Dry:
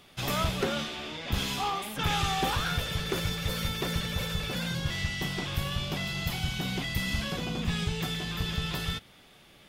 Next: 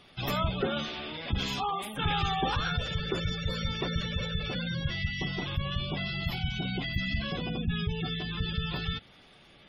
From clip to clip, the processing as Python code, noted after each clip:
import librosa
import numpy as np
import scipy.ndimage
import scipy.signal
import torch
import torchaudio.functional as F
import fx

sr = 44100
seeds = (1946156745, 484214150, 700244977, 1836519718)

y = fx.spec_gate(x, sr, threshold_db=-20, keep='strong')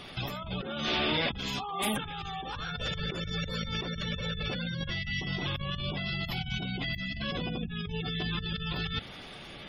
y = fx.over_compress(x, sr, threshold_db=-39.0, ratio=-1.0)
y = F.gain(torch.from_numpy(y), 4.5).numpy()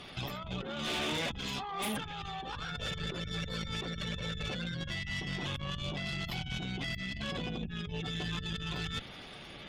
y = fx.tube_stage(x, sr, drive_db=30.0, bias=0.55)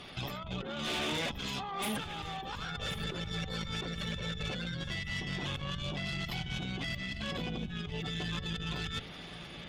y = fx.echo_feedback(x, sr, ms=1076, feedback_pct=30, wet_db=-14)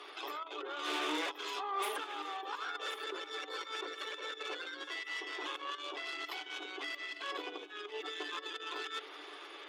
y = scipy.signal.sosfilt(scipy.signal.cheby1(6, 9, 290.0, 'highpass', fs=sr, output='sos'), x)
y = F.gain(torch.from_numpy(y), 4.5).numpy()